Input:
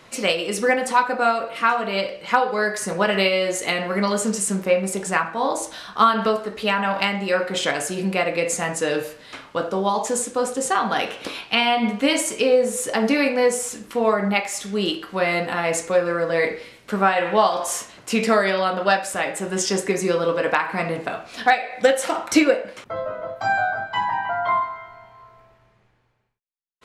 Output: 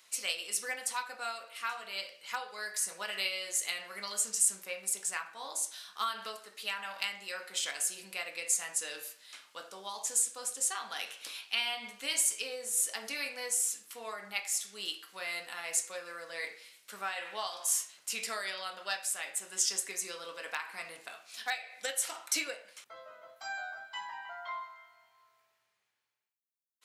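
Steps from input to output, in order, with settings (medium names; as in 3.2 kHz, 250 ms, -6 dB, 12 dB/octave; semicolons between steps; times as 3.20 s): differentiator; trim -3 dB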